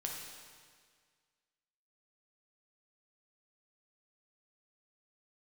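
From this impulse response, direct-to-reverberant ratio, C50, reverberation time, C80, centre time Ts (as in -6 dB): -1.0 dB, 1.5 dB, 1.8 s, 3.5 dB, 75 ms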